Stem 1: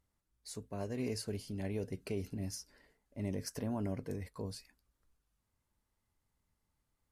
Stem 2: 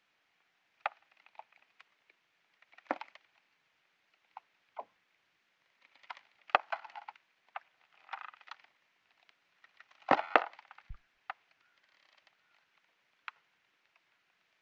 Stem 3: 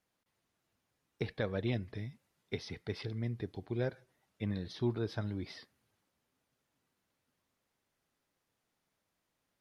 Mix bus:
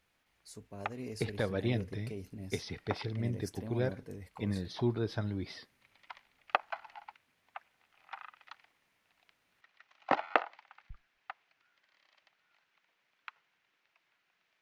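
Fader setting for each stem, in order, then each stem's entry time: -5.0 dB, -2.5 dB, +2.0 dB; 0.00 s, 0.00 s, 0.00 s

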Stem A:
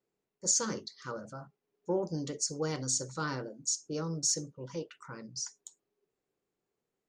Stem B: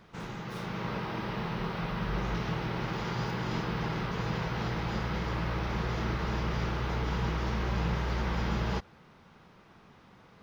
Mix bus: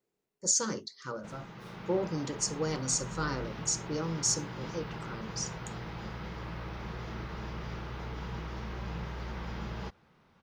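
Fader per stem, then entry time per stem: +1.0 dB, -8.0 dB; 0.00 s, 1.10 s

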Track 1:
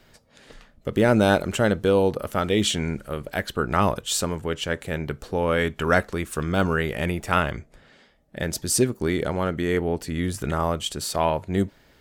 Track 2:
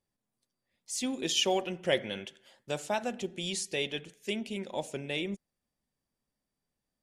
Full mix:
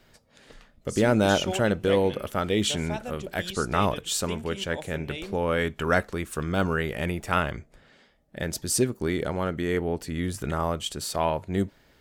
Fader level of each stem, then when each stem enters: -3.0 dB, -3.5 dB; 0.00 s, 0.00 s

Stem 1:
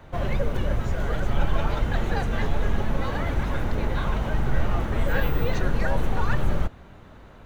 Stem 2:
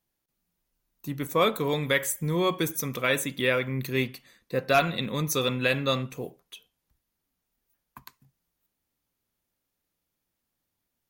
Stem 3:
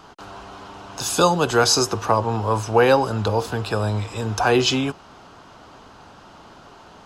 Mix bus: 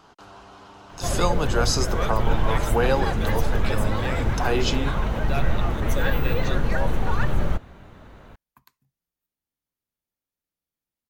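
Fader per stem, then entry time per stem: +1.0 dB, -9.5 dB, -7.0 dB; 0.90 s, 0.60 s, 0.00 s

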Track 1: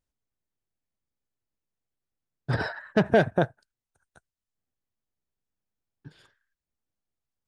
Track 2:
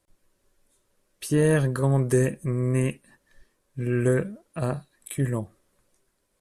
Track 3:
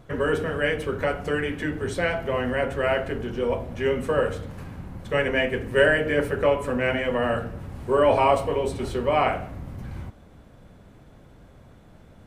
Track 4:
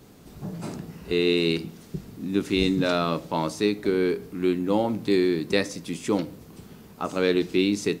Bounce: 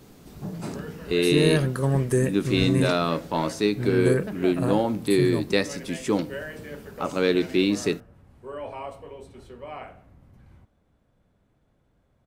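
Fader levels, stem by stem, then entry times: -15.5 dB, -1.0 dB, -17.0 dB, +0.5 dB; 1.30 s, 0.00 s, 0.55 s, 0.00 s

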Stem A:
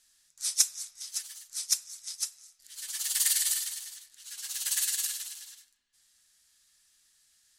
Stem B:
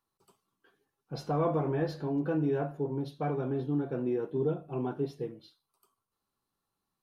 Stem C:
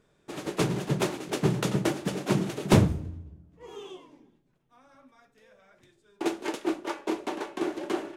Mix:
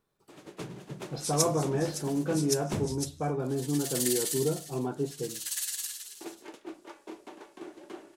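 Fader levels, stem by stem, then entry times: -4.5 dB, +1.0 dB, -14.0 dB; 0.80 s, 0.00 s, 0.00 s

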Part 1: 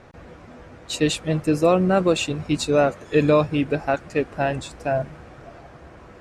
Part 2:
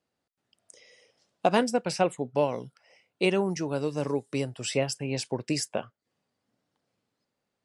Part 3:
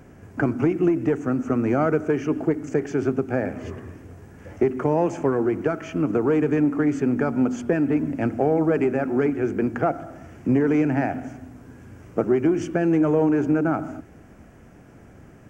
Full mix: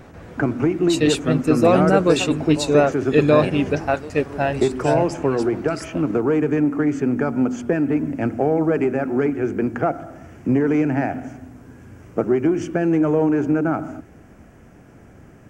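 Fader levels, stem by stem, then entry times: +1.5 dB, -6.0 dB, +1.5 dB; 0.00 s, 0.20 s, 0.00 s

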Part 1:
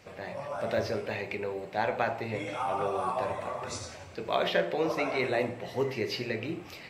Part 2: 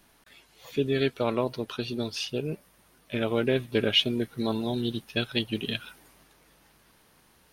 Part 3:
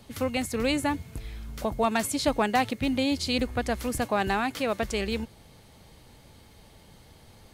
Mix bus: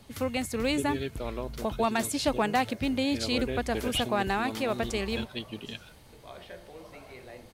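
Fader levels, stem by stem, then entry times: -18.5 dB, -9.0 dB, -2.0 dB; 1.95 s, 0.00 s, 0.00 s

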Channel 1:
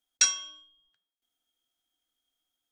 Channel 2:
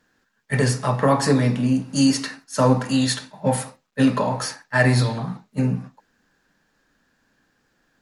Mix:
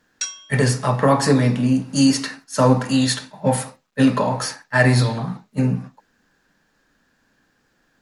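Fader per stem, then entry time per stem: -4.0 dB, +2.0 dB; 0.00 s, 0.00 s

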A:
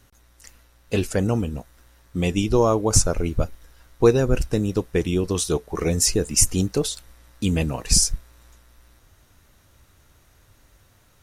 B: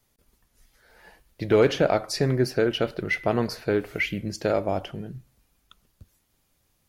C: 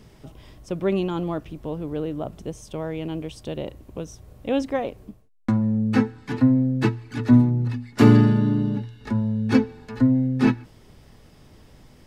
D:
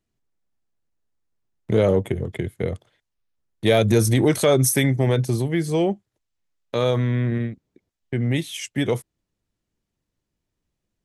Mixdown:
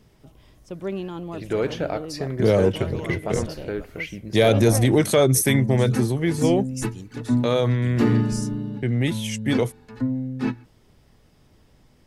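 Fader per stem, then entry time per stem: -18.0 dB, -5.5 dB, -6.5 dB, 0.0 dB; 0.40 s, 0.00 s, 0.00 s, 0.70 s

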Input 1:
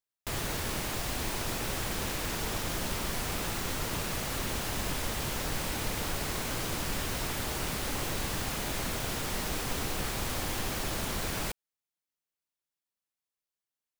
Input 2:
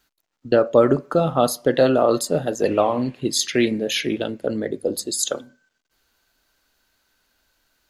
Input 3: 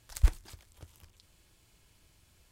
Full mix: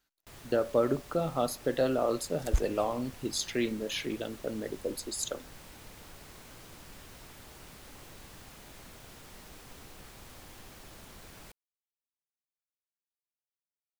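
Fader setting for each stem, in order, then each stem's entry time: -17.0 dB, -11.5 dB, -3.5 dB; 0.00 s, 0.00 s, 2.30 s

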